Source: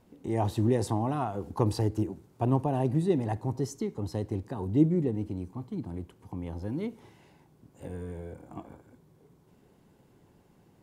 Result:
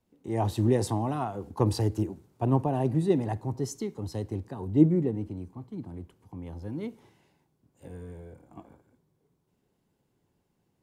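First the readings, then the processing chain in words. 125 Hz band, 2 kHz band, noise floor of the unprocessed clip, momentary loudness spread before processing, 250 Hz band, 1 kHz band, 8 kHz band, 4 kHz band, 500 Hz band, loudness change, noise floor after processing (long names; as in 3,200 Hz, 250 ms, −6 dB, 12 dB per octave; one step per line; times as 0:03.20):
+1.0 dB, +0.5 dB, −62 dBFS, 15 LU, +1.0 dB, +0.5 dB, +3.0 dB, +2.5 dB, +1.0 dB, +2.0 dB, −75 dBFS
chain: multiband upward and downward expander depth 40%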